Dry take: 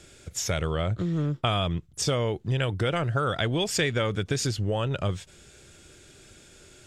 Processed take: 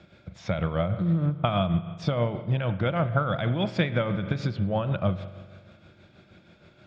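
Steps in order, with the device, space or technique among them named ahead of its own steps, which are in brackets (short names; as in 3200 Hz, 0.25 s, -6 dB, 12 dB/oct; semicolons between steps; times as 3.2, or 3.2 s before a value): combo amplifier with spring reverb and tremolo (spring tank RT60 1.7 s, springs 42 ms, chirp 75 ms, DRR 10.5 dB; tremolo 6.3 Hz, depth 50%; speaker cabinet 86–3400 Hz, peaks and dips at 190 Hz +8 dB, 270 Hz -3 dB, 420 Hz -10 dB, 620 Hz +4 dB, 1800 Hz -6 dB, 2900 Hz -9 dB); gain +3 dB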